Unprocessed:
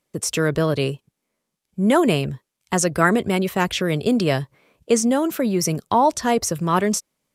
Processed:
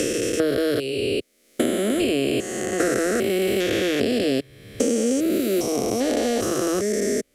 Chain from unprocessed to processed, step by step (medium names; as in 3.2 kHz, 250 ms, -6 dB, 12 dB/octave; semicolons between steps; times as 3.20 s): spectrogram pixelated in time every 400 ms; static phaser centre 390 Hz, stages 4; three bands compressed up and down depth 100%; trim +6 dB